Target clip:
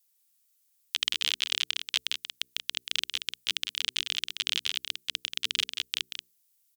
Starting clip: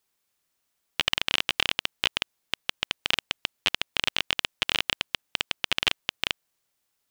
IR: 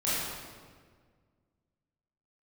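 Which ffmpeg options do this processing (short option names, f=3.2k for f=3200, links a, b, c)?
-filter_complex "[0:a]aderivative,bandreject=f=60:t=h:w=6,bandreject=f=120:t=h:w=6,bandreject=f=180:t=h:w=6,bandreject=f=240:t=h:w=6,bandreject=f=300:t=h:w=6,bandreject=f=360:t=h:w=6,bandreject=f=420:t=h:w=6,asubboost=boost=10.5:cutoff=220,acrossover=split=7700[a][b];[b]alimiter=level_in=5dB:limit=-24dB:level=0:latency=1,volume=-5dB[c];[a][c]amix=inputs=2:normalize=0,asetrate=46305,aresample=44100,aecho=1:1:183:0.422,volume=4.5dB"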